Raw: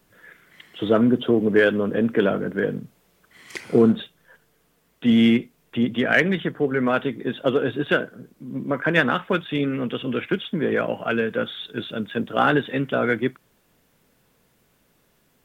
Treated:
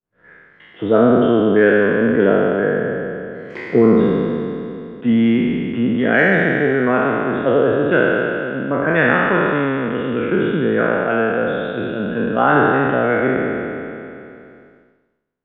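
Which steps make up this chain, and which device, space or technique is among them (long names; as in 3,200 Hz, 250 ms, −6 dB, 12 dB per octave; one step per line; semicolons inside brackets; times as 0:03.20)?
peak hold with a decay on every bin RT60 2.82 s
hearing-loss simulation (low-pass filter 1,700 Hz 12 dB per octave; downward expander −45 dBFS)
level +1.5 dB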